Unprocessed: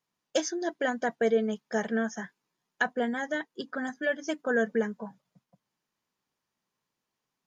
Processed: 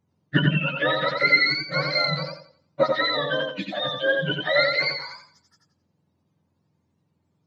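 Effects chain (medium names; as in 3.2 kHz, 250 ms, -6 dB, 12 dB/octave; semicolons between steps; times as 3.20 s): spectrum inverted on a logarithmic axis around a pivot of 970 Hz; modulated delay 88 ms, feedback 32%, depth 56 cents, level -4 dB; trim +8 dB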